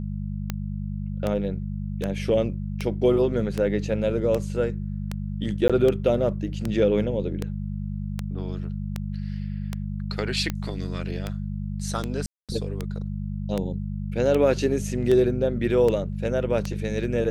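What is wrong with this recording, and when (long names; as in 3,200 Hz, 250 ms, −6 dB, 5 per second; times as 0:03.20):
mains hum 50 Hz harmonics 4 −30 dBFS
scratch tick 78 rpm −13 dBFS
0:05.68–0:05.70: drop-out 16 ms
0:12.26–0:12.49: drop-out 227 ms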